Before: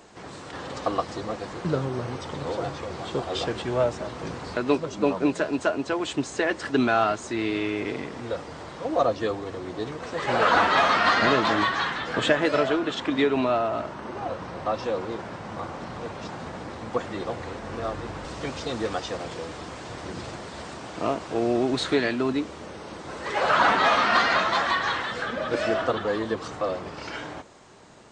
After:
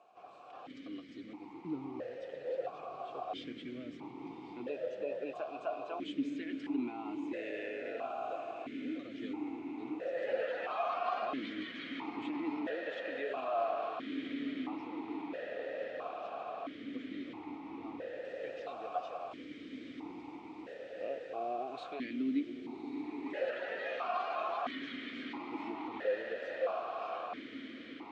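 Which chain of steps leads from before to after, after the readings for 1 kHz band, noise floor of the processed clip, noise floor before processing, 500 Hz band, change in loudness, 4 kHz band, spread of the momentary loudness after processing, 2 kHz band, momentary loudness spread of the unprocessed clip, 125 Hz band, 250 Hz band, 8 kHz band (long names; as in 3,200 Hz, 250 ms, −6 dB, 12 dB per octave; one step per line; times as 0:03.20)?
−14.0 dB, −50 dBFS, −40 dBFS, −12.0 dB, −14.0 dB, −18.5 dB, 11 LU, −17.5 dB, 16 LU, −24.5 dB, −10.5 dB, below −25 dB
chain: feedback delay with all-pass diffusion 1,153 ms, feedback 73%, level −6.5 dB
brickwall limiter −14.5 dBFS, peak gain reduction 9 dB
formant filter that steps through the vowels 1.5 Hz
level −3 dB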